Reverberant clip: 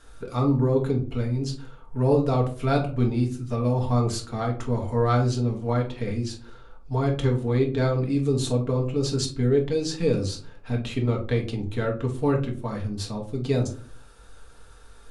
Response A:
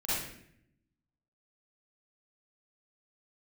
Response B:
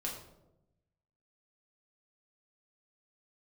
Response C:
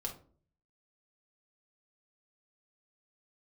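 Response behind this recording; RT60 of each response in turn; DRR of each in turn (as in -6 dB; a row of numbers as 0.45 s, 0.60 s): C; 0.70 s, 0.90 s, 0.45 s; -11.5 dB, -3.0 dB, -0.5 dB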